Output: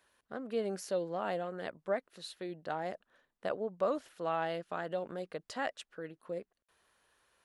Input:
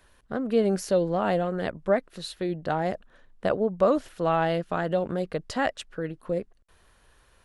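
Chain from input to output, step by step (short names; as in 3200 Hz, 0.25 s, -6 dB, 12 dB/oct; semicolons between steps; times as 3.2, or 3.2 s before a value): HPF 390 Hz 6 dB/oct; gain -8.5 dB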